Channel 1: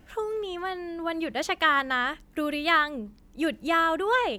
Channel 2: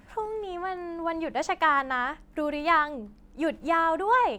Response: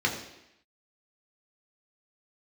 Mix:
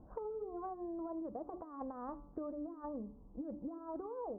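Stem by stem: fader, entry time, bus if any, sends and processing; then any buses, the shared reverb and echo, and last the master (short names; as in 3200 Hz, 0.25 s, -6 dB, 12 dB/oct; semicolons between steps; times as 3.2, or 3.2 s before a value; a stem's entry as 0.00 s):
-5.5 dB, 0.00 s, no send, notches 60/120/180/240/300/360 Hz; negative-ratio compressor -29 dBFS, ratio -0.5
-9.5 dB, 0.00 s, polarity flipped, no send, Chebyshev low-pass 530 Hz, order 10; resonant low shelf 200 Hz -14 dB, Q 1.5; level quantiser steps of 11 dB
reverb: off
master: steep low-pass 1100 Hz 48 dB/oct; de-hum 144.2 Hz, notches 10; compressor, threshold -40 dBFS, peak gain reduction 10 dB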